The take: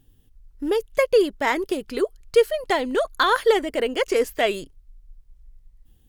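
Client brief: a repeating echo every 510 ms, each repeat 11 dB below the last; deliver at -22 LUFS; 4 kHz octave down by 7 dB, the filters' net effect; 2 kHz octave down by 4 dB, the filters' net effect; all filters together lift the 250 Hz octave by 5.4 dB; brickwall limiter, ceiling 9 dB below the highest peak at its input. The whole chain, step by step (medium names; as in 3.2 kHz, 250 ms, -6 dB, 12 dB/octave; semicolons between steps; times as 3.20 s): peaking EQ 250 Hz +7.5 dB; peaking EQ 2 kHz -3.5 dB; peaking EQ 4 kHz -8 dB; peak limiter -14.5 dBFS; feedback delay 510 ms, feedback 28%, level -11 dB; trim +2 dB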